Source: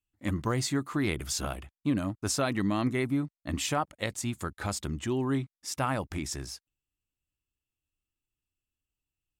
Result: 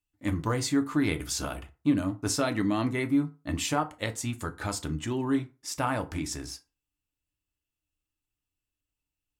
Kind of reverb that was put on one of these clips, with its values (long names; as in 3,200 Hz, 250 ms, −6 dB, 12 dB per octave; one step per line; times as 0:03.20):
feedback delay network reverb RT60 0.31 s, low-frequency decay 0.9×, high-frequency decay 0.65×, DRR 6 dB